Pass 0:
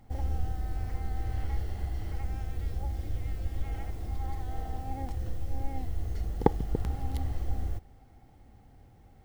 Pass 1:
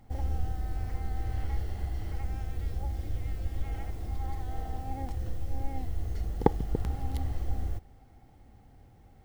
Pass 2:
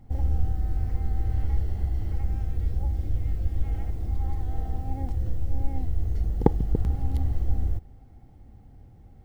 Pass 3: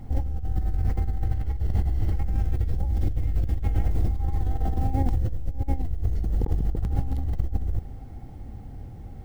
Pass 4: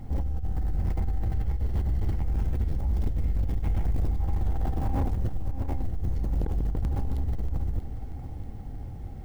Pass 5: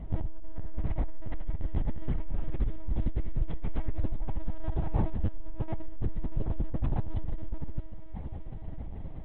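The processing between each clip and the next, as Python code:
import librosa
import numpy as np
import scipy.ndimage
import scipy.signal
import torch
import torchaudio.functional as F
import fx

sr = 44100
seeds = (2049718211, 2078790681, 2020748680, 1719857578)

y1 = x
y2 = fx.low_shelf(y1, sr, hz=450.0, db=11.0)
y2 = y2 * librosa.db_to_amplitude(-4.0)
y3 = fx.over_compress(y2, sr, threshold_db=-29.0, ratio=-1.0)
y3 = y3 * librosa.db_to_amplitude(5.5)
y4 = np.clip(y3, -10.0 ** (-22.5 / 20.0), 10.0 ** (-22.5 / 20.0))
y4 = fx.echo_feedback(y4, sr, ms=635, feedback_pct=57, wet_db=-12.5)
y5 = fx.lpc_vocoder(y4, sr, seeds[0], excitation='pitch_kept', order=10)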